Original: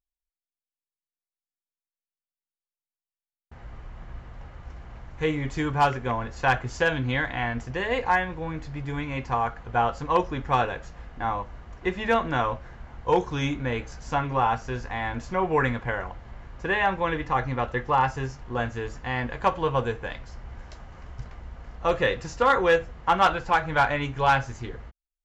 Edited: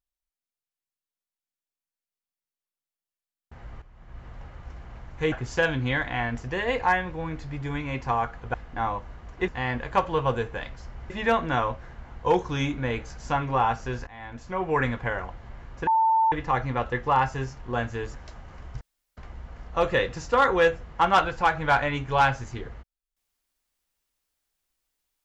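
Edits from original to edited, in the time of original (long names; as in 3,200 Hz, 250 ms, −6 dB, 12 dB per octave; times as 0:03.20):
0:03.82–0:04.26: fade in quadratic, from −12 dB
0:05.32–0:06.55: remove
0:09.77–0:10.98: remove
0:14.89–0:15.74: fade in, from −18 dB
0:16.69–0:17.14: beep over 893 Hz −17.5 dBFS
0:18.97–0:20.59: move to 0:11.92
0:21.25: splice in room tone 0.36 s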